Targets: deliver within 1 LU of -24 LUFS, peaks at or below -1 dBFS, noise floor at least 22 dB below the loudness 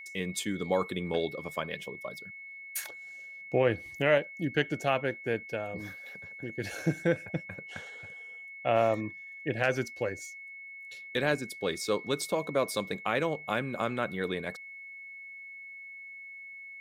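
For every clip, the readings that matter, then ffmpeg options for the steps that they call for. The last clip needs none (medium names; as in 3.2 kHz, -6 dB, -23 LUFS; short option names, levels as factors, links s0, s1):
steady tone 2.2 kHz; tone level -43 dBFS; loudness -32.0 LUFS; peak level -13.0 dBFS; loudness target -24.0 LUFS
-> -af "bandreject=f=2200:w=30"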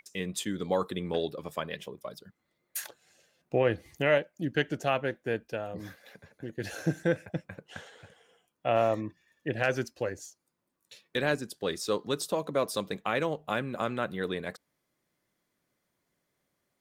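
steady tone not found; loudness -32.0 LUFS; peak level -13.0 dBFS; loudness target -24.0 LUFS
-> -af "volume=2.51"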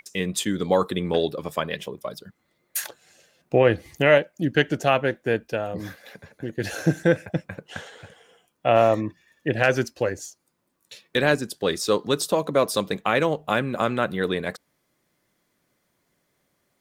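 loudness -24.0 LUFS; peak level -5.0 dBFS; noise floor -72 dBFS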